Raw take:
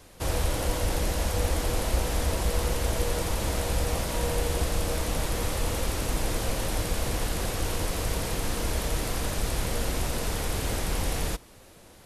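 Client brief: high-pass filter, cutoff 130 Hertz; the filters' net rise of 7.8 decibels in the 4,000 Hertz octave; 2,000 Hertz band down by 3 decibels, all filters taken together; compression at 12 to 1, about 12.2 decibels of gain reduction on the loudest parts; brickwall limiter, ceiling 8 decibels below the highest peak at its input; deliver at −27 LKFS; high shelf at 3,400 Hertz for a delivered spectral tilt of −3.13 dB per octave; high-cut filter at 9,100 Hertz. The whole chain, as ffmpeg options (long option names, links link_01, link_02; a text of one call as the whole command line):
ffmpeg -i in.wav -af "highpass=130,lowpass=9100,equalizer=frequency=2000:width_type=o:gain=-8.5,highshelf=frequency=3400:gain=6.5,equalizer=frequency=4000:width_type=o:gain=7.5,acompressor=threshold=-38dB:ratio=12,volume=15.5dB,alimiter=limit=-19dB:level=0:latency=1" out.wav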